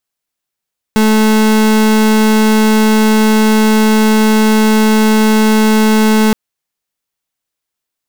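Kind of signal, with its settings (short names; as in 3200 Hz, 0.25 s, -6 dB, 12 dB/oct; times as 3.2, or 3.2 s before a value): pulse 217 Hz, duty 36% -9 dBFS 5.37 s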